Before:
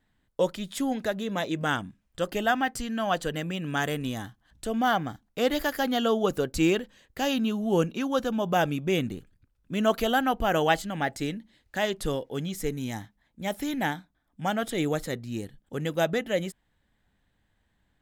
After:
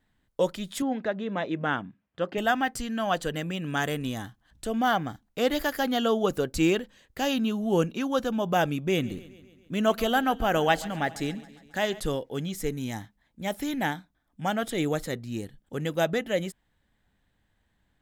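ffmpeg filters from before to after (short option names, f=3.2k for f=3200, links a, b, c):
-filter_complex "[0:a]asettb=1/sr,asplit=3[a][b][c];[a]atrim=end=0.824[d];[b]atrim=start=0.82:end=2.38,asetpts=PTS-STARTPTS,afade=t=in:d=0.004:c=qsin,afade=t=out:st=1.556:d=0.004:c=qsin,highpass=130,lowpass=2.6k[e];[c]atrim=start=2.376[f];[d][e]acrossfade=d=0.004:c1=hsin:c2=qsin[g];[g][f]acrossfade=d=0.004:c1=qsin:c2=hsin,asettb=1/sr,asplit=3[h][i][j];[h]atrim=end=8.814[k];[i]atrim=start=8.81:end=12,asetpts=PTS-STARTPTS,afade=t=in:d=0.004:c=qsin,afade=t=out:st=3.186:d=0.004:c=qsin,aecho=1:1:137|274|411|548|685:0.112|0.0673|0.0404|0.0242|0.0145,atrim=end_sample=140679[l];[j]atrim=start=11.996[m];[k][l]acrossfade=d=0.004:c1=hsin:c2=qsin[n];[n][m]acrossfade=d=0.004:c1=qsin:c2=hsin"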